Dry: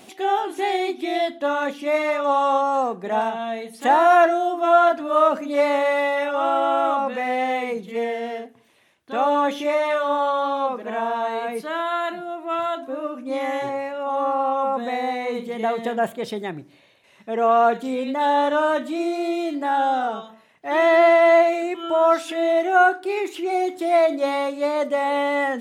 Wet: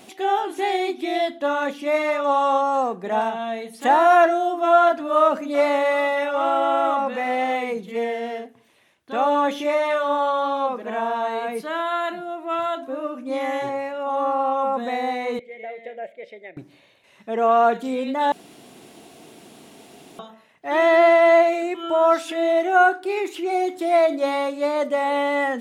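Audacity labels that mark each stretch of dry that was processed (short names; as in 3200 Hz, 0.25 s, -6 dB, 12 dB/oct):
4.770000	7.560000	echo 0.777 s -20.5 dB
15.390000	16.570000	double band-pass 1100 Hz, apart 1.9 oct
18.320000	20.190000	room tone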